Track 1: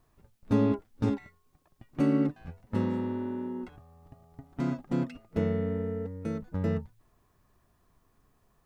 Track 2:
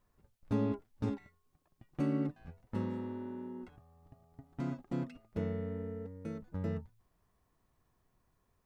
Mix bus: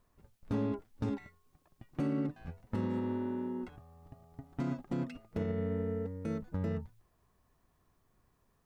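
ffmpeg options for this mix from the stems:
ffmpeg -i stem1.wav -i stem2.wav -filter_complex "[0:a]volume=-8dB[link_01];[1:a]aeval=exprs='0.0562*(abs(mod(val(0)/0.0562+3,4)-2)-1)':channel_layout=same,volume=0.5dB[link_02];[link_01][link_02]amix=inputs=2:normalize=0,alimiter=level_in=2dB:limit=-24dB:level=0:latency=1:release=67,volume=-2dB" out.wav

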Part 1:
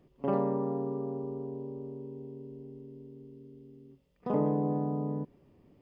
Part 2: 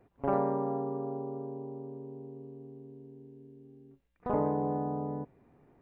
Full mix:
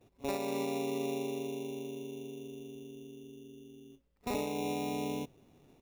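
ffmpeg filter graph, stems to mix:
ffmpeg -i stem1.wav -i stem2.wav -filter_complex "[0:a]volume=-10dB[link_01];[1:a]highshelf=frequency=2000:gain=-9.5,acrusher=samples=14:mix=1:aa=0.000001,adelay=8.6,volume=0dB[link_02];[link_01][link_02]amix=inputs=2:normalize=0,alimiter=level_in=1dB:limit=-24dB:level=0:latency=1:release=368,volume=-1dB" out.wav

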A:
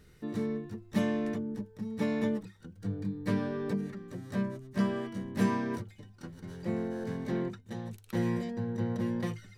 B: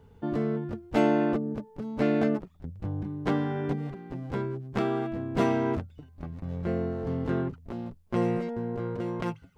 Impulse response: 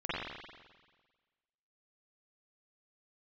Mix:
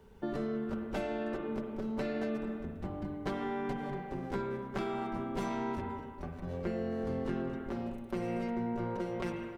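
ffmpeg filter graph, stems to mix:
-filter_complex "[0:a]volume=-14dB[link_01];[1:a]equalizer=frequency=160:width=3:gain=-11.5,bandreject=frequency=50:width_type=h:width=6,bandreject=frequency=100:width_type=h:width=6,bandreject=frequency=150:width_type=h:width=6,alimiter=limit=-22.5dB:level=0:latency=1:release=168,volume=-2dB,asplit=2[link_02][link_03];[link_03]volume=-8.5dB[link_04];[2:a]atrim=start_sample=2205[link_05];[link_04][link_05]afir=irnorm=-1:irlink=0[link_06];[link_01][link_02][link_06]amix=inputs=3:normalize=0,aecho=1:1:5.2:0.53,acrossover=split=150|3000[link_07][link_08][link_09];[link_08]acompressor=threshold=-33dB:ratio=6[link_10];[link_07][link_10][link_09]amix=inputs=3:normalize=0"

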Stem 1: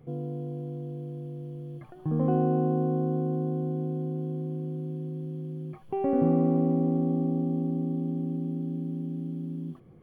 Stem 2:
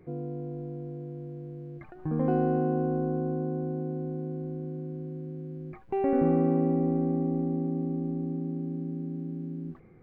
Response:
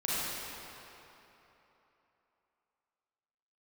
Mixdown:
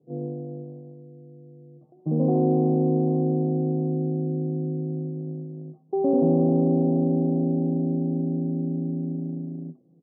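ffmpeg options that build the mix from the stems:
-filter_complex "[0:a]asoftclip=type=tanh:threshold=-23dB,volume=2.5dB,asplit=2[link_01][link_02];[link_02]volume=-18.5dB[link_03];[1:a]adelay=1,volume=-1.5dB[link_04];[2:a]atrim=start_sample=2205[link_05];[link_03][link_05]afir=irnorm=-1:irlink=0[link_06];[link_01][link_04][link_06]amix=inputs=3:normalize=0,agate=range=-13dB:threshold=-28dB:ratio=16:detection=peak,asuperpass=centerf=320:order=8:qfactor=0.54"

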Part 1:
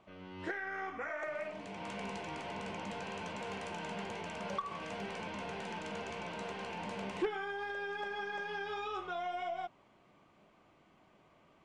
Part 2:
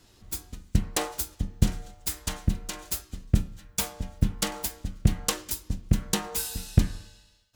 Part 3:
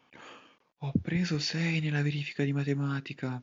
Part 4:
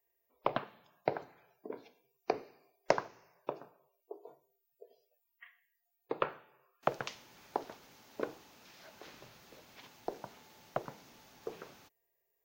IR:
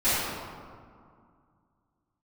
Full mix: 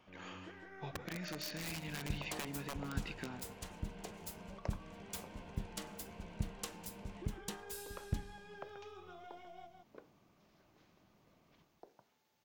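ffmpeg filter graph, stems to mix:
-filter_complex "[0:a]acrossover=split=390|3300[link_01][link_02][link_03];[link_01]acompressor=threshold=-52dB:ratio=4[link_04];[link_02]acompressor=threshold=-48dB:ratio=4[link_05];[link_03]acompressor=threshold=-59dB:ratio=4[link_06];[link_04][link_05][link_06]amix=inputs=3:normalize=0,lowshelf=frequency=340:gain=10.5,volume=-10.5dB,asplit=2[link_07][link_08];[link_08]volume=-4.5dB[link_09];[1:a]adelay=1350,volume=-17.5dB[link_10];[2:a]equalizer=frequency=95:width=1:gain=-15,aeval=exprs='(mod(17.8*val(0)+1,2)-1)/17.8':channel_layout=same,acompressor=threshold=-39dB:ratio=12,volume=-1.5dB,asplit=2[link_11][link_12];[link_12]volume=-13dB[link_13];[3:a]adelay=1750,volume=-19dB[link_14];[link_09][link_13]amix=inputs=2:normalize=0,aecho=0:1:158:1[link_15];[link_07][link_10][link_11][link_14][link_15]amix=inputs=5:normalize=0"

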